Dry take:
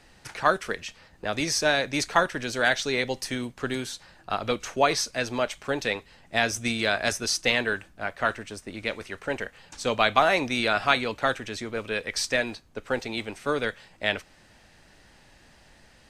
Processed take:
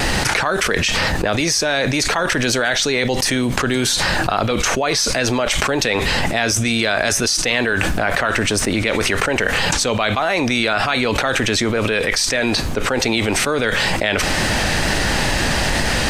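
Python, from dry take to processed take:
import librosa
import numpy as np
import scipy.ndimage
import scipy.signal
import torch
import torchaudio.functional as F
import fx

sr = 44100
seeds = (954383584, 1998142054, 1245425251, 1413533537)

y = fx.wow_flutter(x, sr, seeds[0], rate_hz=2.1, depth_cents=26.0)
y = fx.env_flatten(y, sr, amount_pct=100)
y = F.gain(torch.from_numpy(y), -2.0).numpy()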